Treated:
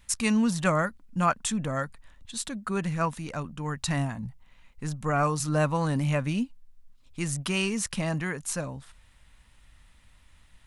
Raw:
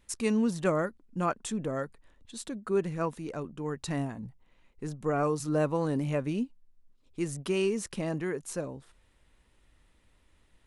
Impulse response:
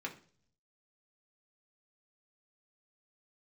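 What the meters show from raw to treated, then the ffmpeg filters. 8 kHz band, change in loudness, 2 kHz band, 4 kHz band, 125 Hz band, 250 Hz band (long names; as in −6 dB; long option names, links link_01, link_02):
+8.5 dB, +3.0 dB, +8.0 dB, +8.5 dB, +6.0 dB, +2.5 dB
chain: -af "equalizer=frequency=390:width_type=o:width=1.1:gain=-15,volume=8.5dB"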